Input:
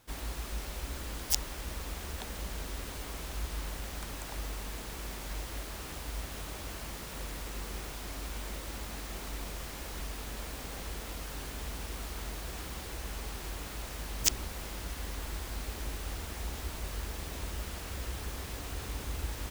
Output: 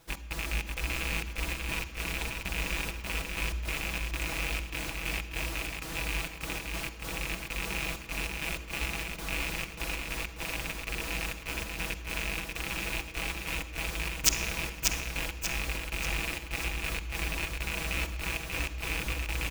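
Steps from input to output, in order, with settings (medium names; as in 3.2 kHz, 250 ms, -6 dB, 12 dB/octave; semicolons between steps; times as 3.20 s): rattle on loud lows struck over -39 dBFS, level -22 dBFS; comb 6.1 ms, depth 68%; trance gate "x.xx.xxx.x." 98 bpm -60 dB; feedback delay 588 ms, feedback 44%, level -4 dB; on a send at -11.5 dB: reverberation RT60 2.0 s, pre-delay 48 ms; on the sum: trim +1.5 dB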